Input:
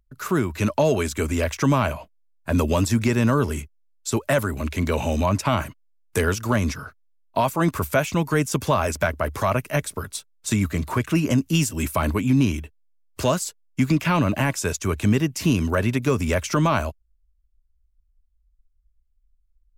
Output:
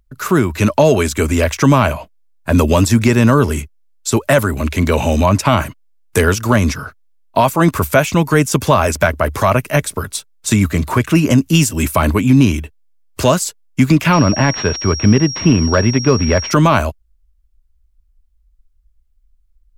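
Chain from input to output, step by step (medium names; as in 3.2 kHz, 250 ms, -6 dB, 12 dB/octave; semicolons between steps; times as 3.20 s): 14.13–16.51 s: class-D stage that switches slowly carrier 5.6 kHz; trim +8.5 dB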